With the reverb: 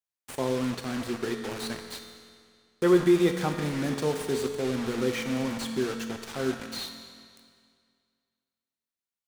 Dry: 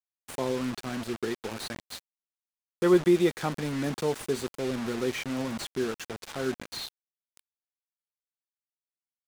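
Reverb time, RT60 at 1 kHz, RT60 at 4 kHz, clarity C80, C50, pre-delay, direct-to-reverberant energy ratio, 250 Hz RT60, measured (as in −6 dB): 2.1 s, 2.1 s, 1.9 s, 7.0 dB, 6.0 dB, 4 ms, 4.5 dB, 2.1 s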